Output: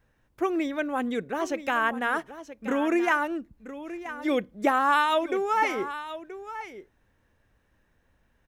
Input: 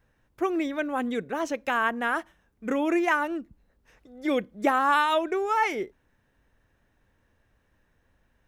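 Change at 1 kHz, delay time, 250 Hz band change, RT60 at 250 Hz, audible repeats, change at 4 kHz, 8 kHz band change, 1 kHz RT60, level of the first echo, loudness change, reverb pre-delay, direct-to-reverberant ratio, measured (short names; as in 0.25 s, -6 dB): 0.0 dB, 0.978 s, 0.0 dB, none, 1, 0.0 dB, 0.0 dB, none, -13.0 dB, -0.5 dB, none, none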